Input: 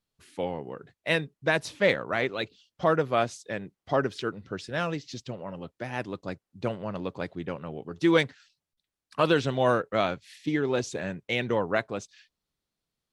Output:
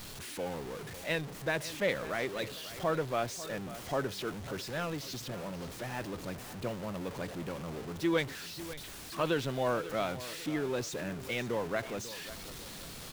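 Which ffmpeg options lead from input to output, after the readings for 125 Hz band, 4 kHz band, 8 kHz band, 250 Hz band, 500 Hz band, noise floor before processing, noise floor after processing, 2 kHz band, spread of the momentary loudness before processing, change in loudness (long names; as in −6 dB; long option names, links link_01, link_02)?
−5.5 dB, −4.0 dB, +3.0 dB, −6.5 dB, −7.0 dB, below −85 dBFS, −46 dBFS, −7.0 dB, 14 LU, −7.0 dB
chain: -af "aeval=exprs='val(0)+0.5*0.0335*sgn(val(0))':channel_layout=same,aecho=1:1:544|1088|1632:0.178|0.0676|0.0257,volume=-9dB"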